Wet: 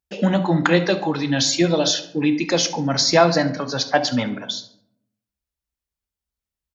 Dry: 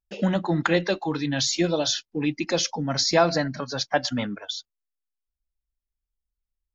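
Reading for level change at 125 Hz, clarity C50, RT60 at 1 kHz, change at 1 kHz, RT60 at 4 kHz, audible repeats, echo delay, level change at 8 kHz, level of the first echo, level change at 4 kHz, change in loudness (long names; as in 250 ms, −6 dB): +5.5 dB, 12.0 dB, 0.65 s, +5.0 dB, 0.40 s, 1, 70 ms, can't be measured, −16.5 dB, +5.0 dB, +5.0 dB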